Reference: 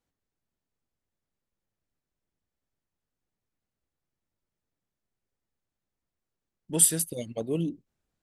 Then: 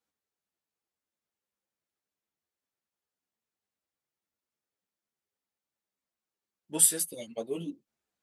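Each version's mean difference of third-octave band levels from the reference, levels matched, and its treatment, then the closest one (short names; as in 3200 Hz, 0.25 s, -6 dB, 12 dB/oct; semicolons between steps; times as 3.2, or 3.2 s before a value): 3.5 dB: HPF 460 Hz 6 dB/oct; ensemble effect; gain +2 dB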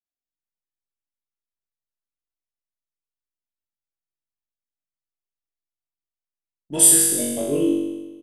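8.5 dB: gate -45 dBFS, range -28 dB; comb 3 ms, depth 35%; on a send: flutter echo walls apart 3.6 m, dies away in 1.2 s; on the sum: gain +2 dB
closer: first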